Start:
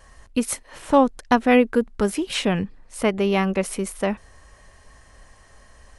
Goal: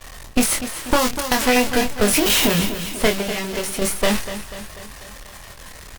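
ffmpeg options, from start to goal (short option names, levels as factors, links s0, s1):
-filter_complex "[0:a]aeval=exprs='val(0)+0.5*0.075*sgn(val(0))':c=same,asettb=1/sr,asplit=3[s0][s1][s2];[s0]atrim=end=2.134[s3];[s1]atrim=start=2.13:end=2.55,asetpts=PTS-STARTPTS,afade=t=in:d=0.004:c=qsin,afade=t=out:st=0.416:d=0.004:c=qsin,aemphasis=mode=production:type=50fm[s4];[s2]atrim=start=2.546[s5];[s3][s4]acrossfade=d=0.004:c1=hsin:c2=qsin[s6];[s6][s5]acrossfade=d=0.004:c1=qsin:c2=hsin,agate=range=0.0224:threshold=0.158:ratio=3:detection=peak,asettb=1/sr,asplit=3[s7][s8][s9];[s7]atrim=end=0.994[s10];[s8]atrim=start=0.99:end=1.42,asetpts=PTS-STARTPTS,afade=t=in:d=0.004:c=qsin,afade=t=out:st=0.426:d=0.004:c=qsin,highshelf=f=3100:g=10.5[s11];[s9]atrim=start=1.416[s12];[s10][s11]acrossfade=d=0.004:c1=hsin:c2=qsin[s13];[s13][s12]acrossfade=d=0.004:c1=qsin:c2=hsin,acrossover=split=1700|5000[s14][s15][s16];[s14]acompressor=threshold=0.0398:ratio=4[s17];[s15]acompressor=threshold=0.0282:ratio=4[s18];[s16]acompressor=threshold=0.0251:ratio=4[s19];[s17][s18][s19]amix=inputs=3:normalize=0,aeval=exprs='max(val(0),0)':c=same,asettb=1/sr,asplit=3[s20][s21][s22];[s20]atrim=end=3.184[s23];[s21]atrim=start=3.18:end=3.82,asetpts=PTS-STARTPTS,afade=t=in:d=0.004:c=qsin,afade=t=out:st=0.636:d=0.004:c=qsin,acompressor=threshold=0.0158:ratio=6[s24];[s22]atrim=start=3.816[s25];[s23][s24]acrossfade=d=0.004:c1=hsin:c2=qsin[s26];[s26][s25]acrossfade=d=0.004:c1=qsin:c2=hsin,asplit=2[s27][s28];[s28]adelay=24,volume=0.562[s29];[s27][s29]amix=inputs=2:normalize=0,aecho=1:1:245|490|735|980|1225|1470:0.251|0.138|0.076|0.0418|0.023|0.0126,alimiter=level_in=7.5:limit=0.891:release=50:level=0:latency=1,volume=0.841" -ar 48000 -c:a libopus -b:a 48k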